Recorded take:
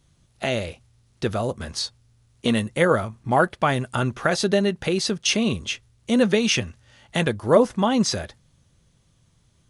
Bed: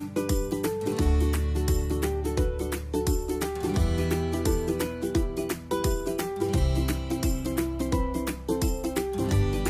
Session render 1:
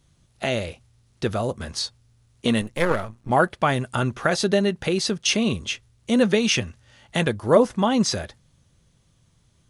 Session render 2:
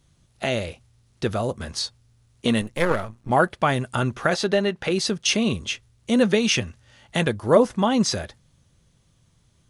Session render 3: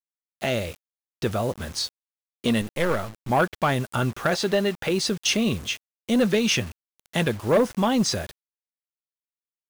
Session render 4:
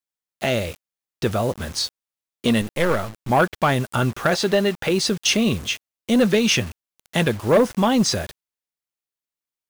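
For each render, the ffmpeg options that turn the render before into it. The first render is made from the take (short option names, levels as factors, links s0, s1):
-filter_complex "[0:a]asettb=1/sr,asplit=3[s0][s1][s2];[s0]atrim=end=2.614[s3];[s1]atrim=start=2.61:end=3.3,asetpts=PTS-STARTPTS,afade=t=in:d=0.004:c=qsin,afade=t=out:st=0.686:d=0.004:c=qsin,aeval=exprs='if(lt(val(0),0),0.251*val(0),val(0))':c=same[s4];[s2]atrim=start=3.296[s5];[s3][s4]acrossfade=d=0.004:c1=hsin:c2=qsin[s6];[s6][s5]acrossfade=d=0.004:c1=qsin:c2=hsin"
-filter_complex "[0:a]asettb=1/sr,asplit=3[s0][s1][s2];[s0]atrim=end=4.344[s3];[s1]atrim=start=4.34:end=4.91,asetpts=PTS-STARTPTS,afade=t=in:d=0.004:c=qsin,afade=t=out:st=0.566:d=0.004:c=qsin,asplit=2[s4][s5];[s5]highpass=f=720:p=1,volume=2.51,asoftclip=type=tanh:threshold=0.376[s6];[s4][s6]amix=inputs=2:normalize=0,lowpass=f=2800:p=1,volume=0.501[s7];[s2]atrim=start=4.906[s8];[s3][s7]acrossfade=d=0.004:c1=hsin:c2=qsin[s9];[s9][s8]acrossfade=d=0.004:c1=qsin:c2=hsin"
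-af "asoftclip=type=tanh:threshold=0.237,acrusher=bits=6:mix=0:aa=0.000001"
-af "volume=1.5"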